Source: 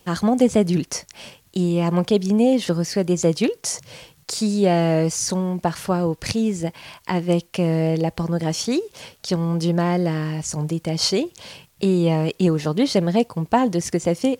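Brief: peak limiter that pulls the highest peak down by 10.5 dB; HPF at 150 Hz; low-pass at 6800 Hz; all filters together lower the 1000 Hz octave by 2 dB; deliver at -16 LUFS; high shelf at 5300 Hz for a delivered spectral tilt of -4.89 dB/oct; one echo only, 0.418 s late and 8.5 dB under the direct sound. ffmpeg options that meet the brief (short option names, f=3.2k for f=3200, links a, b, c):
-af "highpass=150,lowpass=6.8k,equalizer=f=1k:t=o:g=-3,highshelf=f=5.3k:g=6.5,alimiter=limit=-13.5dB:level=0:latency=1,aecho=1:1:418:0.376,volume=8dB"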